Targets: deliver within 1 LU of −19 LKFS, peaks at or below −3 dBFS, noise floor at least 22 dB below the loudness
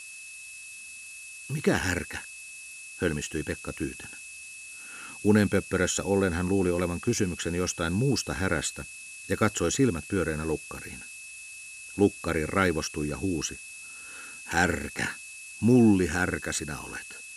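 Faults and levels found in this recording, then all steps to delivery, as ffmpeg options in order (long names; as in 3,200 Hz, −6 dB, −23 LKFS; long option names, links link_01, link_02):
interfering tone 2,600 Hz; level of the tone −43 dBFS; background noise floor −44 dBFS; target noise floor −50 dBFS; integrated loudness −27.5 LKFS; sample peak −8.0 dBFS; target loudness −19.0 LKFS
→ -af "bandreject=frequency=2600:width=30"
-af "afftdn=noise_reduction=6:noise_floor=-44"
-af "volume=8.5dB,alimiter=limit=-3dB:level=0:latency=1"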